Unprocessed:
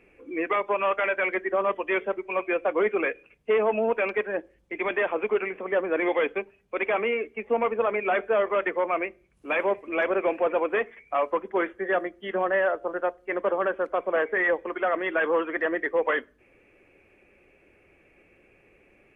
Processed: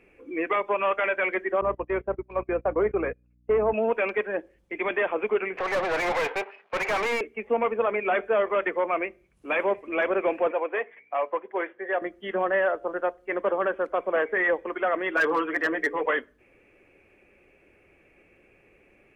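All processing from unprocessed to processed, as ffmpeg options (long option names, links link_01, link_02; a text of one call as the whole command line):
ffmpeg -i in.wav -filter_complex "[0:a]asettb=1/sr,asplit=3[link_01][link_02][link_03];[link_01]atrim=end=1.614[link_04];[link_02]atrim=start=1.61:end=3.74,asetpts=PTS-STARTPTS,afade=type=in:duration=0.004:curve=qsin,afade=type=out:start_time=2.126:duration=0.004:curve=qsin,lowpass=1300,aeval=exprs='val(0)+0.01*(sin(2*PI*60*n/s)+sin(2*PI*2*60*n/s)/2+sin(2*PI*3*60*n/s)/3+sin(2*PI*4*60*n/s)/4+sin(2*PI*5*60*n/s)/5)':channel_layout=same,agate=range=-22dB:threshold=-33dB:ratio=16:release=100:detection=peak[link_05];[link_03]atrim=start=3.736[link_06];[link_04][link_05]acrossfade=duration=0.004:curve1=hsin:curve2=qsin[link_07];[link_07][link_06]acrossfade=duration=0.004:curve1=qsin:curve2=hsin,asettb=1/sr,asplit=3[link_08][link_09][link_10];[link_08]atrim=end=5.574[link_11];[link_09]atrim=start=5.57:end=7.21,asetpts=PTS-STARTPTS,afade=type=in:duration=0.004:curve=qsin,afade=type=out:start_time=1.636:duration=0.004:curve=qsin,aeval=exprs='if(lt(val(0),0),0.251*val(0),val(0))':channel_layout=same,highpass=570,lowpass=2700,asplit=2[link_12][link_13];[link_13]highpass=frequency=720:poles=1,volume=29dB,asoftclip=type=tanh:threshold=-18dB[link_14];[link_12][link_14]amix=inputs=2:normalize=0,lowpass=frequency=2000:poles=1,volume=-6dB[link_15];[link_10]atrim=start=7.206[link_16];[link_11][link_15]acrossfade=duration=0.004:curve1=hsin:curve2=qsin[link_17];[link_17][link_16]acrossfade=duration=0.004:curve1=qsin:curve2=hsin,asettb=1/sr,asplit=3[link_18][link_19][link_20];[link_18]atrim=end=10.514[link_21];[link_19]atrim=start=10.51:end=12.02,asetpts=PTS-STARTPTS,afade=type=in:duration=0.004:curve=qsin,afade=type=out:start_time=1.506:duration=0.004:curve=qsin,equalizer=frequency=1300:width=3.6:gain=-6,aeval=exprs='val(0)+0.00141*(sin(2*PI*60*n/s)+sin(2*PI*2*60*n/s)/2+sin(2*PI*3*60*n/s)/3+sin(2*PI*4*60*n/s)/4+sin(2*PI*5*60*n/s)/5)':channel_layout=same,highpass=470,lowpass=2600[link_22];[link_20]atrim=start=12.016[link_23];[link_21][link_22]acrossfade=duration=0.004:curve1=hsin:curve2=qsin[link_24];[link_24][link_23]acrossfade=duration=0.004:curve1=qsin:curve2=hsin,asettb=1/sr,asplit=3[link_25][link_26][link_27];[link_25]atrim=end=15.164[link_28];[link_26]atrim=start=15.16:end=16.06,asetpts=PTS-STARTPTS,afade=type=in:duration=0.004:curve=qsin,afade=type=out:start_time=0.896:duration=0.004:curve=qsin,bandreject=frequency=60:width_type=h:width=6,bandreject=frequency=120:width_type=h:width=6,bandreject=frequency=180:width_type=h:width=6,bandreject=frequency=240:width_type=h:width=6,bandreject=frequency=300:width_type=h:width=6,bandreject=frequency=360:width_type=h:width=6,bandreject=frequency=420:width_type=h:width=6,bandreject=frequency=480:width_type=h:width=6,aecho=1:1:6.9:0.82,atrim=end_sample=39690,asoftclip=type=hard:threshold=-17dB[link_29];[link_27]atrim=start=16.056[link_30];[link_28][link_29]acrossfade=duration=0.004:curve1=hsin:curve2=qsin[link_31];[link_31][link_30]acrossfade=duration=0.004:curve1=qsin:curve2=hsin" out.wav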